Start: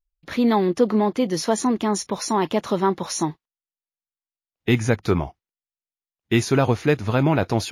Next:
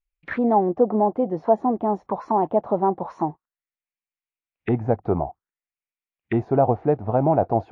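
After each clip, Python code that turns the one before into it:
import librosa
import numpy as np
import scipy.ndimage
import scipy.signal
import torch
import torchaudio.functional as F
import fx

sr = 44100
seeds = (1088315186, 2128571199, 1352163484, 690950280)

y = fx.envelope_lowpass(x, sr, base_hz=740.0, top_hz=2400.0, q=4.0, full_db=-20.5, direction='down')
y = y * 10.0 ** (-4.0 / 20.0)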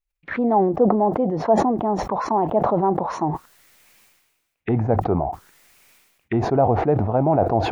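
y = fx.sustainer(x, sr, db_per_s=45.0)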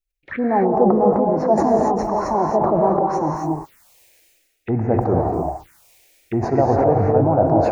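y = fx.rev_gated(x, sr, seeds[0], gate_ms=300, shape='rising', drr_db=0.0)
y = fx.env_phaser(y, sr, low_hz=170.0, high_hz=3300.0, full_db=-21.0)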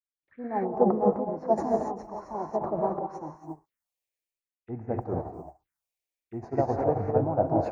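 y = fx.upward_expand(x, sr, threshold_db=-32.0, expansion=2.5)
y = y * 10.0 ** (-4.5 / 20.0)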